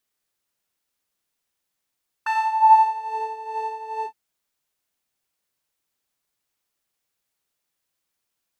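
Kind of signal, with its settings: synth patch with tremolo A5, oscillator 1 square, oscillator 2 saw, interval 0 st, detune 23 cents, oscillator 2 level -2 dB, sub -27.5 dB, noise -21.5 dB, filter bandpass, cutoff 190 Hz, Q 6.6, filter envelope 3 oct, filter decay 0.93 s, filter sustain 40%, attack 7.6 ms, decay 0.07 s, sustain -3 dB, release 0.08 s, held 1.79 s, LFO 2.4 Hz, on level 9 dB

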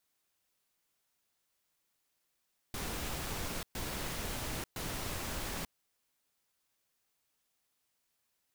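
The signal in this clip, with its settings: noise bursts pink, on 0.89 s, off 0.12 s, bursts 3, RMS -38.5 dBFS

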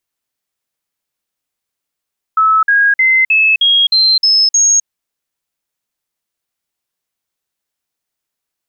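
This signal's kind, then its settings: stepped sine 1.3 kHz up, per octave 3, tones 8, 0.26 s, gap 0.05 s -7 dBFS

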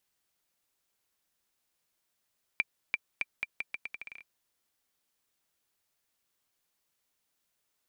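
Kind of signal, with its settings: bouncing ball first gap 0.34 s, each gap 0.8, 2.36 kHz, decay 34 ms -14 dBFS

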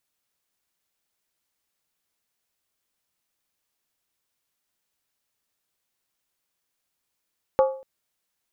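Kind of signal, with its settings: skin hit length 0.24 s, lowest mode 531 Hz, decay 0.45 s, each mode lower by 7 dB, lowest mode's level -12.5 dB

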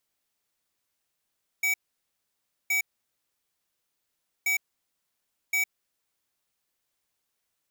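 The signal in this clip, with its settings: beep pattern square 2.28 kHz, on 0.11 s, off 0.96 s, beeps 2, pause 1.65 s, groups 2, -25 dBFS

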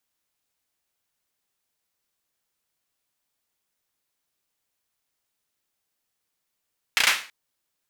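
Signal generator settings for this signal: hand clap length 0.33 s, bursts 4, apart 33 ms, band 2.1 kHz, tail 0.37 s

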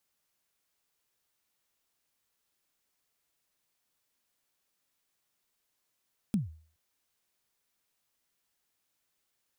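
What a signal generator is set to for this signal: kick drum length 0.42 s, from 230 Hz, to 79 Hz, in 147 ms, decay 0.45 s, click on, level -21.5 dB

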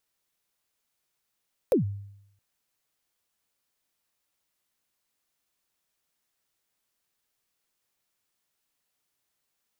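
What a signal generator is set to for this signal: kick drum length 0.67 s, from 580 Hz, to 100 Hz, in 122 ms, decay 0.78 s, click on, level -16 dB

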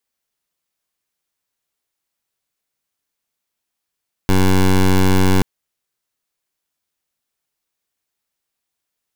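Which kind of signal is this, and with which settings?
pulse 94.2 Hz, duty 15% -12 dBFS 1.13 s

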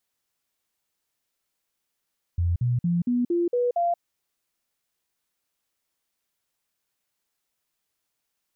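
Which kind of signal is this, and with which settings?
stepped sine 86.3 Hz up, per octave 2, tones 7, 0.18 s, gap 0.05 s -20 dBFS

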